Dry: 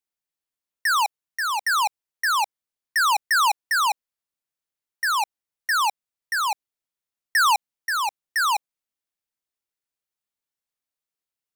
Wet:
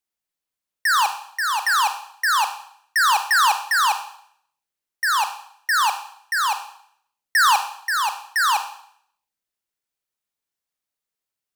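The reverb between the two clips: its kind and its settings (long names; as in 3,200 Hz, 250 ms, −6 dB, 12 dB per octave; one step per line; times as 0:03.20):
four-comb reverb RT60 0.64 s, combs from 30 ms, DRR 8 dB
level +2 dB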